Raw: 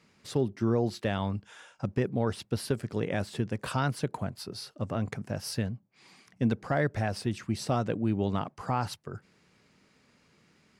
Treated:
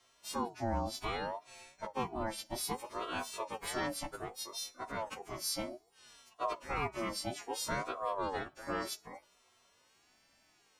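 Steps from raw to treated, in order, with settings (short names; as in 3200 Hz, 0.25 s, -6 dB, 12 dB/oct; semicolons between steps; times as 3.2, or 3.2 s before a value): frequency quantiser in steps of 2 st; two-slope reverb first 0.37 s, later 2.6 s, from -20 dB, DRR 18.5 dB; ring modulator with a swept carrier 650 Hz, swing 35%, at 0.63 Hz; gain -5 dB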